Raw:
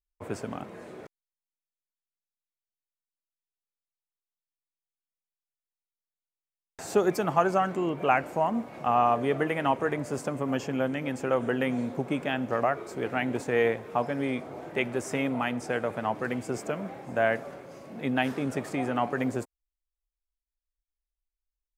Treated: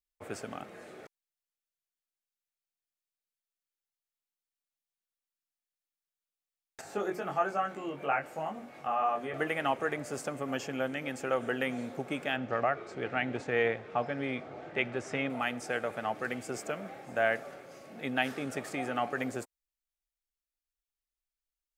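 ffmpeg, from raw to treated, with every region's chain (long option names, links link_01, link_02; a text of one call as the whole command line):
ffmpeg -i in.wav -filter_complex "[0:a]asettb=1/sr,asplit=3[link_01][link_02][link_03];[link_01]atrim=end=6.814[link_04];[link_02]atrim=start=6.81:end=9.34,asetpts=PTS-STARTPTS,afade=type=in:duration=0.004:curve=qsin,afade=type=out:start_time=2.526:duration=0.004:curve=qsin,bandreject=frequency=60:width_type=h:width=6,bandreject=frequency=120:width_type=h:width=6,bandreject=frequency=180:width_type=h:width=6,bandreject=frequency=240:width_type=h:width=6,bandreject=frequency=300:width_type=h:width=6,bandreject=frequency=360:width_type=h:width=6,bandreject=frequency=420:width_type=h:width=6,acrossover=split=2500[link_05][link_06];[link_06]acompressor=threshold=-49dB:ratio=4:attack=1:release=60[link_07];[link_05][link_07]amix=inputs=2:normalize=0,flanger=delay=19.5:depth=2.2:speed=1.2[link_08];[link_03]atrim=start=9.336[link_09];[link_04][link_08]acrossfade=duration=0.004:curve1=hsin:curve2=qsin[link_10];[link_10][link_09]acrossfade=duration=0.004:curve1=qsin:curve2=hsin,asettb=1/sr,asplit=3[link_11][link_12][link_13];[link_11]atrim=end=12.364[link_14];[link_12]atrim=start=12.36:end=15.3,asetpts=PTS-STARTPTS,afade=type=in:duration=0.004:curve=qsin,afade=type=out:start_time=2.936:duration=0.004:curve=qsin,lowpass=4400,equalizer=frequency=110:width_type=o:width=1.4:gain=5[link_15];[link_13]atrim=start=15.296[link_16];[link_14][link_15]acrossfade=duration=0.004:curve1=hsin:curve2=qsin[link_17];[link_17][link_16]acrossfade=duration=0.004:curve1=qsin:curve2=hsin,lowshelf=frequency=490:gain=-9.5,bandreject=frequency=990:width=6.2" out.wav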